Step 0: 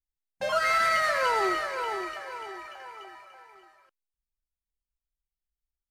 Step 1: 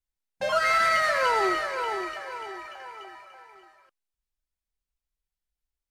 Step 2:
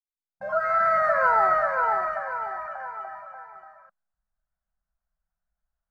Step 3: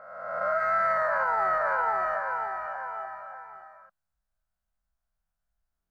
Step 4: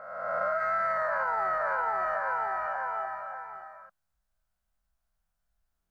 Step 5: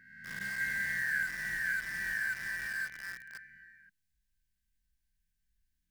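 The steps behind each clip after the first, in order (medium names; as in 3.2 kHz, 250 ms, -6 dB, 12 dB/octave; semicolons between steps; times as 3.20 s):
treble shelf 12 kHz -5.5 dB; band-stop 1.2 kHz, Q 26; trim +2 dB
fade-in on the opening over 1.86 s; FFT filter 100 Hz 0 dB, 200 Hz +5 dB, 350 Hz -22 dB, 650 Hz +8 dB, 940 Hz +1 dB, 1.5 kHz +6 dB, 3.1 kHz -27 dB, 4.6 kHz -21 dB, 10 kHz -22 dB, 14 kHz -26 dB; trim +4 dB
reverse spectral sustain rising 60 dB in 1.25 s; peak limiter -15.5 dBFS, peak gain reduction 9 dB; trim -2.5 dB
compression, threshold -29 dBFS, peak gain reduction 7 dB; trim +3 dB
brick-wall FIR band-stop 340–1500 Hz; in parallel at -3.5 dB: bit crusher 7-bit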